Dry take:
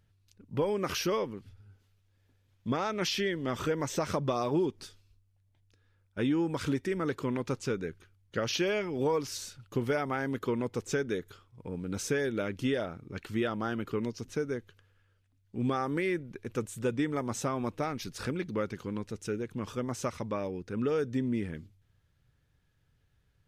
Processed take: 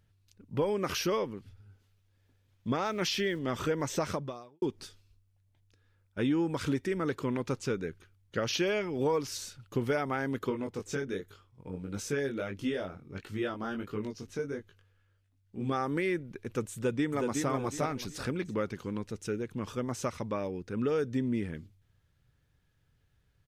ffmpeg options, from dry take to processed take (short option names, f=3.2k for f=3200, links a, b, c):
-filter_complex "[0:a]asettb=1/sr,asplit=3[a][b][c];[a]atrim=end=2.854[d];[b]atrim=start=2.85:end=3.39,asetpts=PTS-STARTPTS,afade=t=in:d=0.004:c=qsin,afade=t=out:st=0.536:d=0.004:c=qsin,aeval=exprs='val(0)*gte(abs(val(0)),0.00266)':c=same[e];[c]atrim=start=3.386[f];[d][e]acrossfade=d=0.004:c1=hsin:c2=qsin[g];[g][f]acrossfade=d=0.004:c1=qsin:c2=hsin,asplit=3[h][i][j];[h]afade=t=out:st=10.49:d=0.02[k];[i]flanger=delay=19.5:depth=2.7:speed=1.5,afade=t=in:st=10.49:d=0.02,afade=t=out:st=15.71:d=0.02[l];[j]afade=t=in:st=15.71:d=0.02[m];[k][l][m]amix=inputs=3:normalize=0,asplit=2[n][o];[o]afade=t=in:st=16.75:d=0.01,afade=t=out:st=17.49:d=0.01,aecho=0:1:370|740|1110|1480:0.630957|0.189287|0.0567862|0.0170358[p];[n][p]amix=inputs=2:normalize=0,asplit=2[q][r];[q]atrim=end=4.62,asetpts=PTS-STARTPTS,afade=t=out:st=4.07:d=0.55:c=qua[s];[r]atrim=start=4.62,asetpts=PTS-STARTPTS,afade=t=in:d=0.004:c=hsin[t];[s][t]concat=n=2:v=0:a=1"